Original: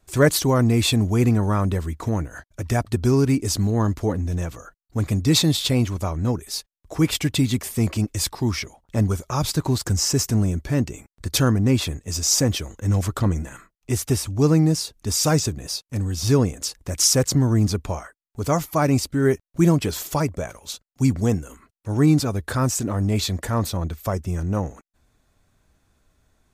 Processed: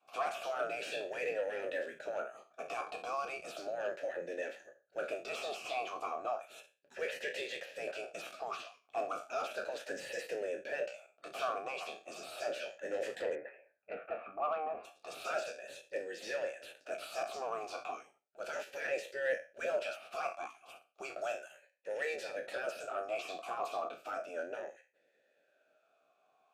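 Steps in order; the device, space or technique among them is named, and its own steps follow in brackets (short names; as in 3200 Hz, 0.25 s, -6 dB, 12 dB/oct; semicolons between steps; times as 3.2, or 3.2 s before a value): spectral trails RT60 0.31 s; 13.35–14.85 steep low-pass 2300 Hz 48 dB/oct; spectral gate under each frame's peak -15 dB weak; talk box (tube stage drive 28 dB, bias 0.3; vowel sweep a-e 0.34 Hz); 21.21–22.16 tilt +1.5 dB/oct; gain +8.5 dB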